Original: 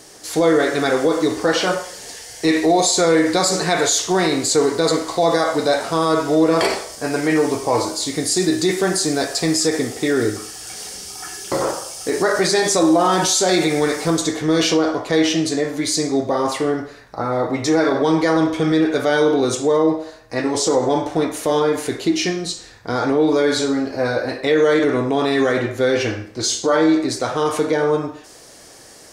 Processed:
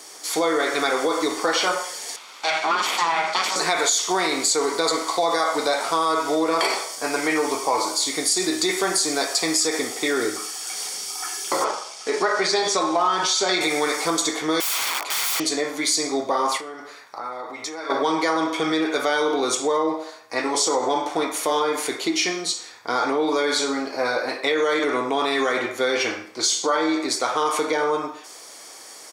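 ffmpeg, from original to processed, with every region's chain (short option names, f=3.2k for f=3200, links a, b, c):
-filter_complex "[0:a]asettb=1/sr,asplit=3[a][b][c];[a]atrim=end=2.164[d];[b]atrim=start=2.16:end=3.56,asetpts=PTS-STARTPTS,afade=t=in:d=0.004:c=qsin,afade=t=out:st=1.396:d=0.004:c=qsin,bandreject=f=60:t=h:w=6,bandreject=f=120:t=h:w=6,bandreject=f=180:t=h:w=6,bandreject=f=240:t=h:w=6,bandreject=f=300:t=h:w=6,bandreject=f=360:t=h:w=6,bandreject=f=420:t=h:w=6,bandreject=f=480:t=h:w=6,aeval=exprs='abs(val(0))':c=same,highpass=250,lowpass=5.4k[e];[c]atrim=start=3.556[f];[d][e]acrossfade=d=0.004:c1=hsin:c2=qsin[g];[g][f]acrossfade=d=0.004:c1=qsin:c2=hsin,asettb=1/sr,asplit=3[h][i][j];[h]atrim=end=11.644[k];[i]atrim=start=11.64:end=13.61,asetpts=PTS-STARTPTS,afade=t=in:d=0.004:c=qsin,afade=t=out:st=1.966:d=0.004:c=qsin,aecho=1:1:4.7:0.44,atrim=end_sample=86877,aeval=exprs='sgn(val(0))*max(abs(val(0))-0.0119,0)':c=same,highpass=100,lowpass=5.3k[l];[j]atrim=start=13.606[m];[k][l]acrossfade=d=0.004:c1=hsin:c2=qsin[n];[n][m]acrossfade=d=0.004:c1=qsin:c2=hsin,asettb=1/sr,asplit=3[o][p][q];[o]atrim=end=14.604[r];[p]atrim=start=14.6:end=15.4,asetpts=PTS-STARTPTS,afade=t=in:d=0.004:c=qsin,afade=t=out:st=0.796:d=0.004:c=qsin,aeval=exprs='(mod(11.2*val(0)+1,2)-1)/11.2':c=same,lowshelf=f=500:g=-9[s];[q]atrim=start=15.396[t];[r][s]acrossfade=d=0.004:c1=hsin:c2=qsin[u];[u][t]acrossfade=d=0.004:c1=qsin:c2=hsin,asettb=1/sr,asplit=3[v][w][x];[v]atrim=end=16.574[y];[w]atrim=start=16.57:end=17.9,asetpts=PTS-STARTPTS,afade=t=in:d=0.004:c=qsin,afade=t=out:st=1.326:d=0.004:c=qsin,acompressor=threshold=-29dB:ratio=3:attack=3.2:release=140:knee=1:detection=peak,lowshelf=f=410:g=-5.5[z];[x]atrim=start=17.896[aa];[y][z]acrossfade=d=0.004:c1=hsin:c2=qsin[ab];[ab][aa]acrossfade=d=0.004:c1=qsin:c2=hsin,highpass=470,aecho=1:1:0.9:0.35,acompressor=threshold=-19dB:ratio=6,volume=2dB"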